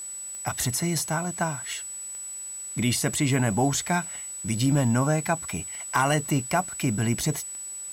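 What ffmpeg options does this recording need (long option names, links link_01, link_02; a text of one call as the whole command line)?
ffmpeg -i in.wav -af "adeclick=threshold=4,bandreject=frequency=7900:width=30,agate=range=-21dB:threshold=-29dB" out.wav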